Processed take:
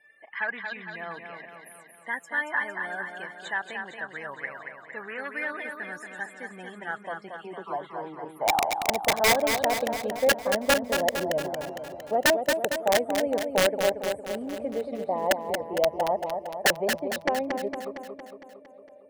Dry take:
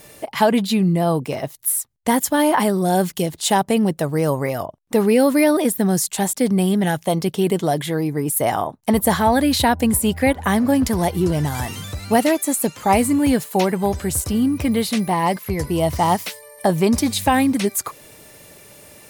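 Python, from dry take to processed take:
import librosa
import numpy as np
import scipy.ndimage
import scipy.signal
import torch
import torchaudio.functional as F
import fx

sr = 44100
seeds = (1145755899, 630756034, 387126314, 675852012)

p1 = np.minimum(x, 2.0 * 10.0 ** (-10.0 / 20.0) - x)
p2 = fx.level_steps(p1, sr, step_db=21)
p3 = p1 + F.gain(torch.from_numpy(p2), -2.0).numpy()
p4 = fx.spec_topn(p3, sr, count=64)
p5 = fx.dispersion(p4, sr, late='lows', ms=67.0, hz=1100.0, at=(7.37, 8.25))
p6 = fx.dmg_crackle(p5, sr, seeds[0], per_s=560.0, level_db=-22.0, at=(14.29, 14.87), fade=0.02)
p7 = fx.filter_sweep_bandpass(p6, sr, from_hz=1700.0, to_hz=580.0, start_s=6.03, end_s=9.72, q=6.7)
p8 = (np.mod(10.0 ** (15.0 / 20.0) * p7 + 1.0, 2.0) - 1.0) / 10.0 ** (15.0 / 20.0)
p9 = fx.air_absorb(p8, sr, metres=180.0, at=(16.98, 17.55))
y = p9 + fx.echo_feedback(p9, sr, ms=229, feedback_pct=59, wet_db=-6.0, dry=0)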